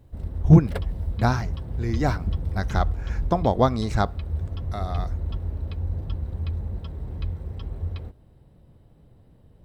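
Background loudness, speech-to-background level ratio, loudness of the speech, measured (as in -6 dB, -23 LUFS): -31.0 LUFS, 7.0 dB, -24.0 LUFS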